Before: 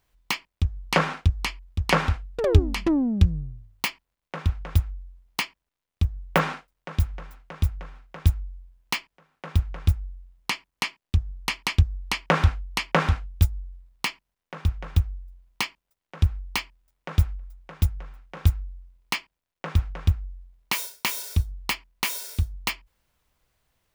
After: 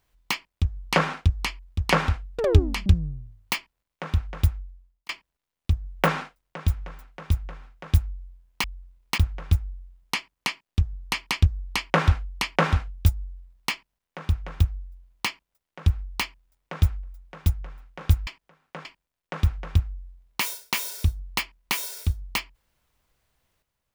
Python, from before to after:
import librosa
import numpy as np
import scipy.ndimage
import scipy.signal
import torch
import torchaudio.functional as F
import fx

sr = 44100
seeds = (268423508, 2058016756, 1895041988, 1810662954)

y = fx.edit(x, sr, fx.cut(start_s=2.86, length_s=0.32),
    fx.fade_out_span(start_s=4.84, length_s=0.57),
    fx.swap(start_s=8.96, length_s=0.58, other_s=18.63, other_length_s=0.54), tone=tone)